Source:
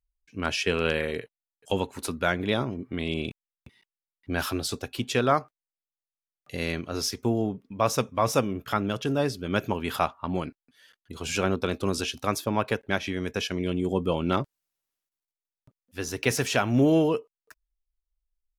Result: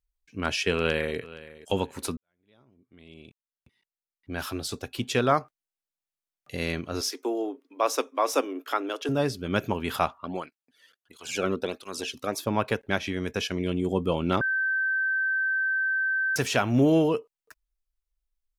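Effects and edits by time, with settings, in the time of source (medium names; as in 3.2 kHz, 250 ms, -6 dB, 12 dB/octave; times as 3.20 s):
0.75–1.17 s: echo throw 470 ms, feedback 25%, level -18 dB
2.17–5.09 s: fade in quadratic
7.01–9.09 s: Chebyshev high-pass 270 Hz, order 6
10.18–12.38 s: cancelling through-zero flanger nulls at 1.5 Hz, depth 1.4 ms
14.41–16.36 s: bleep 1.55 kHz -23 dBFS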